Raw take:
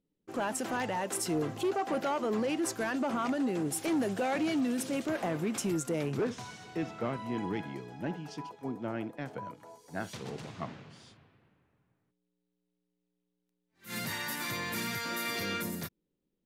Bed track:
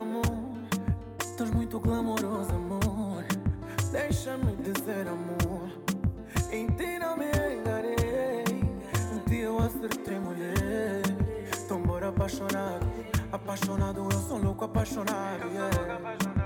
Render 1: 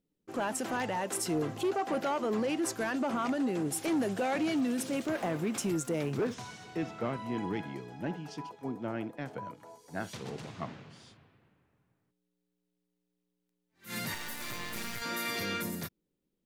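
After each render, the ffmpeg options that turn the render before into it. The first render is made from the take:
ffmpeg -i in.wav -filter_complex "[0:a]asettb=1/sr,asplit=3[link_01][link_02][link_03];[link_01]atrim=end=4.554[link_04];[link_02]atrim=start=4.55:end=6.34,asetpts=PTS-STARTPTS,afade=type=in:duration=0.004:curve=qsin,afade=type=out:start_time=1.786:duration=0.004:curve=qsin,aeval=exprs='val(0)*gte(abs(val(0)),0.00237)':channel_layout=same[link_05];[link_03]atrim=start=6.336[link_06];[link_04][link_05]acrossfade=duration=0.004:curve1=hsin:curve2=qsin[link_07];[link_07][link_06]acrossfade=duration=0.004:curve1=qsin:curve2=hsin,asettb=1/sr,asplit=3[link_08][link_09][link_10];[link_08]atrim=end=14.144[link_11];[link_09]atrim=start=14.14:end=15.02,asetpts=PTS-STARTPTS,afade=type=in:duration=0.004:curve=qsin,afade=type=out:start_time=0.876:duration=0.004:curve=qsin,acrusher=bits=5:dc=4:mix=0:aa=0.000001[link_12];[link_10]atrim=start=15.016[link_13];[link_11][link_12]acrossfade=duration=0.004:curve1=hsin:curve2=qsin[link_14];[link_14][link_13]acrossfade=duration=0.004:curve1=qsin:curve2=hsin" out.wav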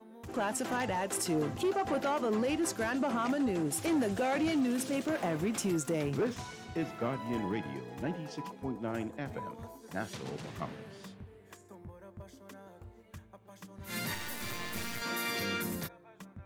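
ffmpeg -i in.wav -i bed.wav -filter_complex "[1:a]volume=-20.5dB[link_01];[0:a][link_01]amix=inputs=2:normalize=0" out.wav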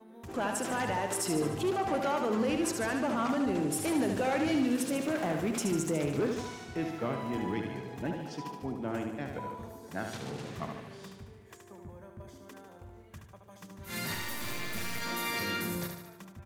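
ffmpeg -i in.wav -af "aecho=1:1:74|148|222|296|370|444|518:0.501|0.286|0.163|0.0928|0.0529|0.0302|0.0172" out.wav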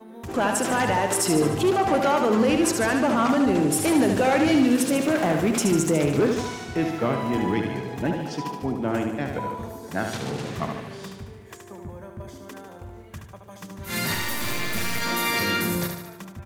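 ffmpeg -i in.wav -af "volume=9.5dB" out.wav

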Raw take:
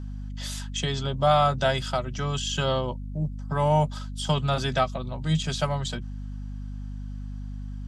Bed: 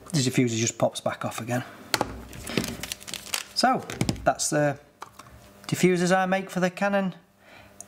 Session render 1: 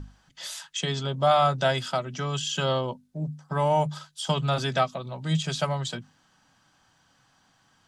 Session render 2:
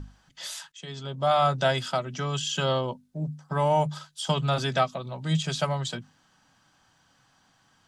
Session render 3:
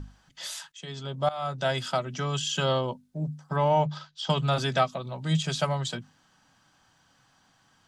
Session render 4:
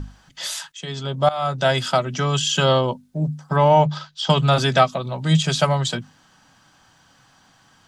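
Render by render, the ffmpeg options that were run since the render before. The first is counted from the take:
ffmpeg -i in.wav -af "bandreject=frequency=50:width_type=h:width=6,bandreject=frequency=100:width_type=h:width=6,bandreject=frequency=150:width_type=h:width=6,bandreject=frequency=200:width_type=h:width=6,bandreject=frequency=250:width_type=h:width=6" out.wav
ffmpeg -i in.wav -filter_complex "[0:a]asplit=2[link_01][link_02];[link_01]atrim=end=0.72,asetpts=PTS-STARTPTS,afade=type=out:start_time=0.716:duration=0.004:curve=hsin:silence=0.105925[link_03];[link_02]atrim=start=0.72,asetpts=PTS-STARTPTS,afade=type=in:duration=0.8:silence=0.105925[link_04];[link_03][link_04]concat=n=2:v=0:a=1" out.wav
ffmpeg -i in.wav -filter_complex "[0:a]asettb=1/sr,asplit=3[link_01][link_02][link_03];[link_01]atrim=end=3.564[link_04];[link_02]atrim=start=3.56:end=4.3,asetpts=PTS-STARTPTS,afade=type=in:duration=0.004:curve=qsin,afade=type=out:start_time=0.736:duration=0.004:curve=qsin,lowpass=frequency=5400:width=0.5412,lowpass=frequency=5400:width=1.3066[link_05];[link_03]atrim=start=4.296[link_06];[link_04][link_05]acrossfade=duration=0.004:curve1=hsin:curve2=qsin[link_07];[link_07][link_06]acrossfade=duration=0.004:curve1=qsin:curve2=hsin,asplit=2[link_08][link_09];[link_08]atrim=end=1.29,asetpts=PTS-STARTPTS,afade=type=out:start_time=1.286:duration=0.004:curve=hsin:silence=0.11885[link_10];[link_09]atrim=start=1.29,asetpts=PTS-STARTPTS,afade=type=in:duration=0.61:silence=0.11885[link_11];[link_10][link_11]concat=n=2:v=0:a=1" out.wav
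ffmpeg -i in.wav -af "volume=8.5dB" out.wav

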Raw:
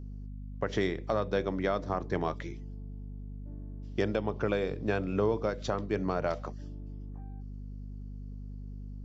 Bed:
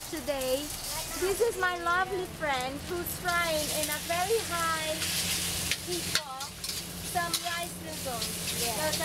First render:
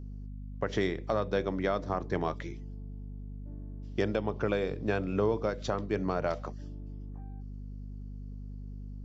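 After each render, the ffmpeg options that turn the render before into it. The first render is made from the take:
ffmpeg -i in.wav -af anull out.wav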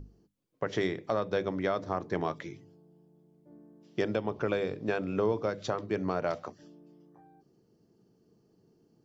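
ffmpeg -i in.wav -af "bandreject=frequency=50:width_type=h:width=6,bandreject=frequency=100:width_type=h:width=6,bandreject=frequency=150:width_type=h:width=6,bandreject=frequency=200:width_type=h:width=6,bandreject=frequency=250:width_type=h:width=6,bandreject=frequency=300:width_type=h:width=6" out.wav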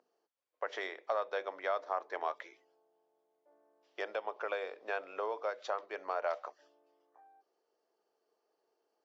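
ffmpeg -i in.wav -af "highpass=frequency=590:width=0.5412,highpass=frequency=590:width=1.3066,aemphasis=mode=reproduction:type=75kf" out.wav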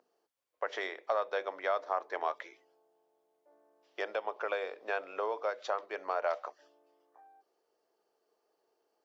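ffmpeg -i in.wav -af "volume=2.5dB" out.wav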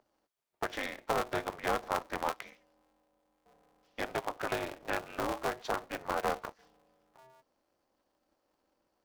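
ffmpeg -i in.wav -af "aeval=exprs='val(0)*sgn(sin(2*PI*130*n/s))':channel_layout=same" out.wav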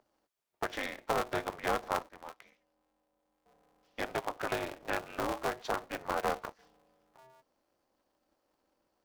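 ffmpeg -i in.wav -filter_complex "[0:a]asplit=2[link_01][link_02];[link_01]atrim=end=2.09,asetpts=PTS-STARTPTS,afade=type=out:start_time=2.086:duration=0.004:curve=hsin:silence=0.11885[link_03];[link_02]atrim=start=2.09,asetpts=PTS-STARTPTS,afade=type=in:duration=1.91:silence=0.11885[link_04];[link_03][link_04]concat=n=2:v=0:a=1" out.wav

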